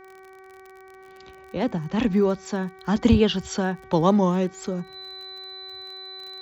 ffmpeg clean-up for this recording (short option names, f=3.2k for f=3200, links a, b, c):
-af "adeclick=t=4,bandreject=f=380:t=h:w=4,bandreject=f=760:t=h:w=4,bandreject=f=1.14k:t=h:w=4,bandreject=f=1.52k:t=h:w=4,bandreject=f=1.9k:t=h:w=4,bandreject=f=2.28k:t=h:w=4,bandreject=f=4k:w=30"